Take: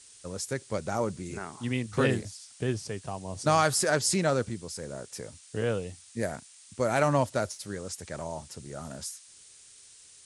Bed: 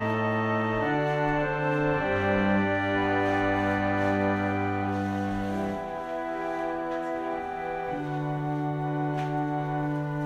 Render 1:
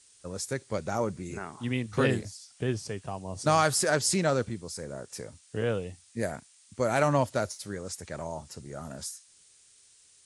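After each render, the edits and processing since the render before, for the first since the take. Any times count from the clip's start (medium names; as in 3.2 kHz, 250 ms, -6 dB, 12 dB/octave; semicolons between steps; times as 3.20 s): noise print and reduce 6 dB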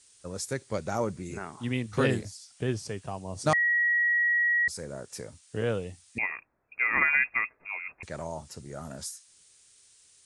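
3.53–4.68 s: bleep 1.91 kHz -21.5 dBFS; 6.18–8.03 s: frequency inversion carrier 2.6 kHz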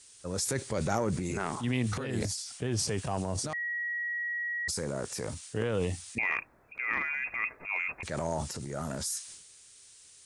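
compressor with a negative ratio -31 dBFS, ratio -1; transient shaper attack -3 dB, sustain +9 dB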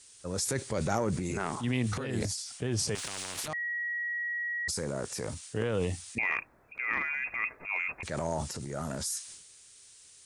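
2.95–3.48 s: spectrum-flattening compressor 10:1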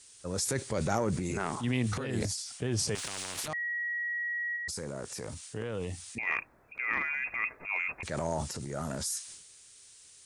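4.56–6.27 s: compression 1.5:1, threshold -41 dBFS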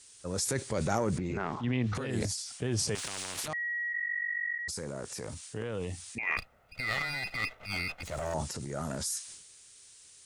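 1.18–1.95 s: distance through air 200 m; 3.92–4.59 s: formants replaced by sine waves; 6.37–8.34 s: comb filter that takes the minimum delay 1.5 ms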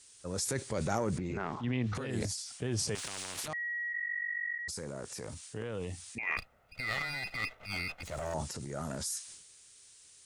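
trim -2.5 dB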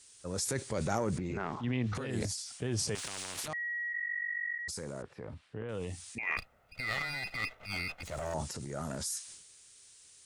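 5.02–5.69 s: distance through air 460 m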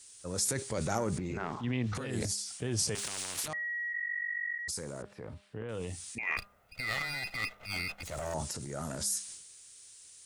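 treble shelf 6.5 kHz +7 dB; de-hum 202.1 Hz, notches 8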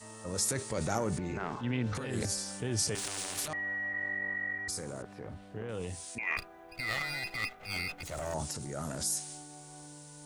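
add bed -23 dB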